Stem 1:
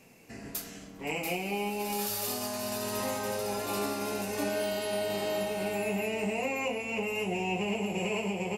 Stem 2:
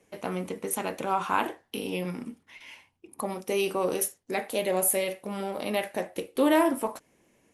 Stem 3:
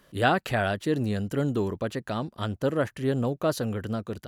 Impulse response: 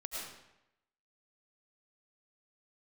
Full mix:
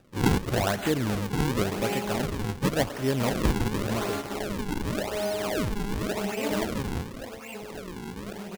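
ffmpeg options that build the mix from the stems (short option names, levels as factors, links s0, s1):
-filter_complex "[0:a]adelay=300,volume=1.12,asplit=2[s0][s1];[s1]volume=0.398[s2];[1:a]dynaudnorm=f=580:g=5:m=1.41,flanger=delay=16:depth=6.8:speed=2.8,volume=0.316,asplit=2[s3][s4];[2:a]highshelf=f=2000:g=6,volume=0.841,asplit=2[s5][s6];[s6]volume=0.224[s7];[s4]apad=whole_len=391246[s8];[s0][s8]sidechaingate=range=0.0224:threshold=0.00178:ratio=16:detection=peak[s9];[3:a]atrim=start_sample=2205[s10];[s7][s10]afir=irnorm=-1:irlink=0[s11];[s2]aecho=0:1:265|530|795|1060|1325:1|0.33|0.109|0.0359|0.0119[s12];[s9][s3][s5][s11][s12]amix=inputs=5:normalize=0,acrusher=samples=41:mix=1:aa=0.000001:lfo=1:lforange=65.6:lforate=0.9"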